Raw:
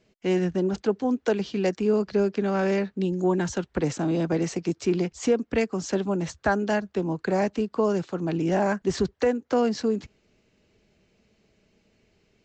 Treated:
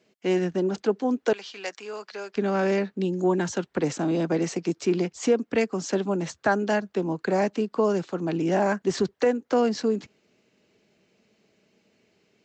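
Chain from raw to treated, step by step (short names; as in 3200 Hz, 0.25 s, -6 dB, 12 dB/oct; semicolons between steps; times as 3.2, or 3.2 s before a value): HPF 200 Hz 12 dB/oct, from 1.33 s 970 Hz, from 2.36 s 170 Hz; gain +1 dB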